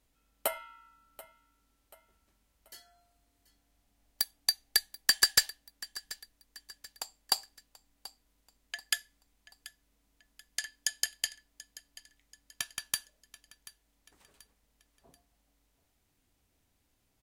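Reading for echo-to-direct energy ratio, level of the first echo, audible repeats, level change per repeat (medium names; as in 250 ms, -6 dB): -17.5 dB, -18.5 dB, 3, -7.5 dB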